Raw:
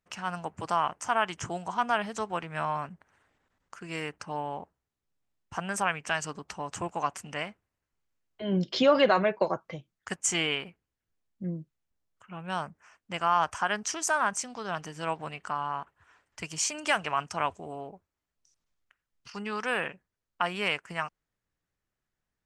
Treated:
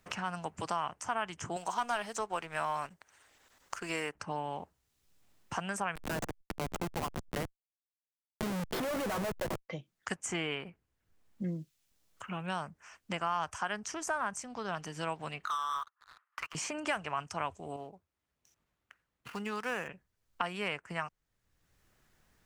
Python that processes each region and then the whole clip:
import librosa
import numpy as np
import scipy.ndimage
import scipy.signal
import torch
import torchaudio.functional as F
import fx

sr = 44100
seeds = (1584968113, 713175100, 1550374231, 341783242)

y = fx.chain(x, sr, fx.bass_treble(bass_db=-13, treble_db=6),
    fx.leveller(passes=1), at=(1.56, 4.15))
y = fx.chain(y, sr, fx.schmitt(flips_db=-31.5),
    fx.pre_swell(db_per_s=150.0), at=(5.95, 9.69))
y = fx.chain(y, sr, fx.ladder_bandpass(hz=1300.0, resonance_pct=75),
    fx.leveller(passes=3), at=(15.45, 16.55))
y = fx.chain(y, sr, fx.median_filter(points=9),
    fx.highpass(hz=50.0, slope=12),
    fx.upward_expand(threshold_db=-46.0, expansion=1.5), at=(17.76, 19.88))
y = fx.dynamic_eq(y, sr, hz=3800.0, q=0.92, threshold_db=-41.0, ratio=4.0, max_db=-4)
y = fx.band_squash(y, sr, depth_pct=70)
y = F.gain(torch.from_numpy(y), -4.5).numpy()